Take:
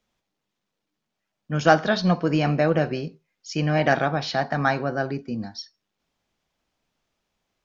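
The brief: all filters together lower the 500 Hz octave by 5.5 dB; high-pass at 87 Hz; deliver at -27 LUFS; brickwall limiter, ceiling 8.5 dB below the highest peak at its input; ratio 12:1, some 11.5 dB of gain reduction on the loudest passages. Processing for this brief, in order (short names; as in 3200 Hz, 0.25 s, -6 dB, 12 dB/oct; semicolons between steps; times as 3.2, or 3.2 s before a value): HPF 87 Hz; bell 500 Hz -7.5 dB; compressor 12:1, threshold -24 dBFS; gain +6 dB; limiter -15.5 dBFS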